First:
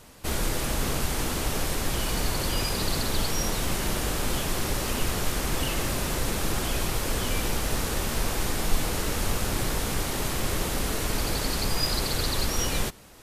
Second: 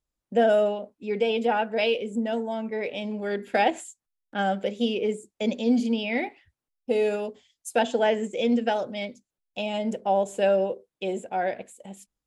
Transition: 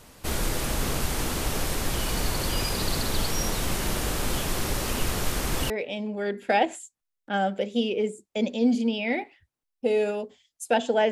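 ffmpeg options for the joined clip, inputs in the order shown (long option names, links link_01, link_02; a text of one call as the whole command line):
ffmpeg -i cue0.wav -i cue1.wav -filter_complex "[0:a]apad=whole_dur=11.11,atrim=end=11.11,atrim=end=5.702[link_01];[1:a]atrim=start=2.748:end=8.16[link_02];[link_01][link_02]acrossfade=duration=0.004:curve1=hsin:curve2=hsin" out.wav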